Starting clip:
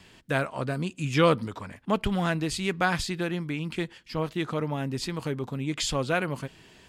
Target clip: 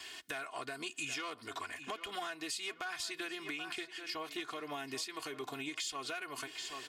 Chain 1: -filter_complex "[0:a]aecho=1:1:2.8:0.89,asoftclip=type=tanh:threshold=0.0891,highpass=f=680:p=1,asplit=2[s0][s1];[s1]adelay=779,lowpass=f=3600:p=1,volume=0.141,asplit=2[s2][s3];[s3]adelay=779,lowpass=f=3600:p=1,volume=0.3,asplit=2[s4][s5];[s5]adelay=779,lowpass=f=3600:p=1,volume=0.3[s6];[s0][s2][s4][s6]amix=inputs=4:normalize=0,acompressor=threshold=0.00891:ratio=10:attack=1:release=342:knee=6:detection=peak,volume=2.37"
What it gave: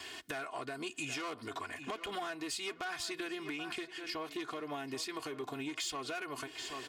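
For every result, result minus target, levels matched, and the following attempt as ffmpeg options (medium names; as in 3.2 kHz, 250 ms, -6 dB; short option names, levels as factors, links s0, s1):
saturation: distortion +7 dB; 500 Hz band +2.5 dB
-filter_complex "[0:a]aecho=1:1:2.8:0.89,asoftclip=type=tanh:threshold=0.188,highpass=f=680:p=1,asplit=2[s0][s1];[s1]adelay=779,lowpass=f=3600:p=1,volume=0.141,asplit=2[s2][s3];[s3]adelay=779,lowpass=f=3600:p=1,volume=0.3,asplit=2[s4][s5];[s5]adelay=779,lowpass=f=3600:p=1,volume=0.3[s6];[s0][s2][s4][s6]amix=inputs=4:normalize=0,acompressor=threshold=0.00891:ratio=10:attack=1:release=342:knee=6:detection=peak,volume=2.37"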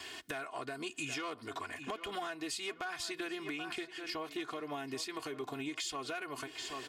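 500 Hz band +3.0 dB
-filter_complex "[0:a]aecho=1:1:2.8:0.89,asoftclip=type=tanh:threshold=0.188,highpass=f=1800:p=1,asplit=2[s0][s1];[s1]adelay=779,lowpass=f=3600:p=1,volume=0.141,asplit=2[s2][s3];[s3]adelay=779,lowpass=f=3600:p=1,volume=0.3,asplit=2[s4][s5];[s5]adelay=779,lowpass=f=3600:p=1,volume=0.3[s6];[s0][s2][s4][s6]amix=inputs=4:normalize=0,acompressor=threshold=0.00891:ratio=10:attack=1:release=342:knee=6:detection=peak,volume=2.37"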